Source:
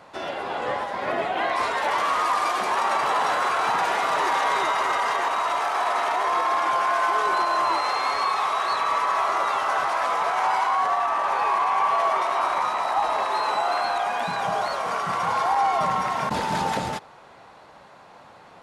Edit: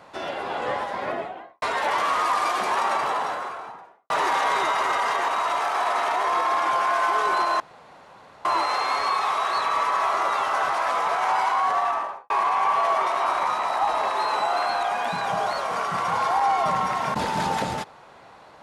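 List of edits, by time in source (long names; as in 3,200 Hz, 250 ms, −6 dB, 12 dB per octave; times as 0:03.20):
0:00.91–0:01.62: fade out and dull
0:02.75–0:04.10: fade out and dull
0:07.60: splice in room tone 0.85 s
0:11.02–0:11.45: fade out and dull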